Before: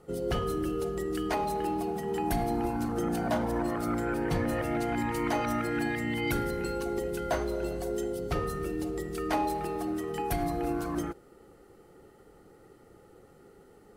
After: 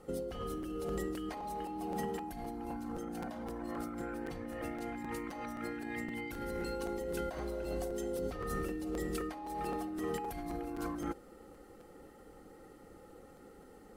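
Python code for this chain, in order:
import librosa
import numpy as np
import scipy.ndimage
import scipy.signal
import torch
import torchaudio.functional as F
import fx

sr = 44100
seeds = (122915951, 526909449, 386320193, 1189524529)

y = x + 0.45 * np.pad(x, (int(3.8 * sr / 1000.0), 0))[:len(x)]
y = fx.over_compress(y, sr, threshold_db=-35.0, ratio=-1.0)
y = fx.buffer_crackle(y, sr, first_s=0.62, period_s=0.26, block=256, kind='repeat')
y = y * 10.0 ** (-4.5 / 20.0)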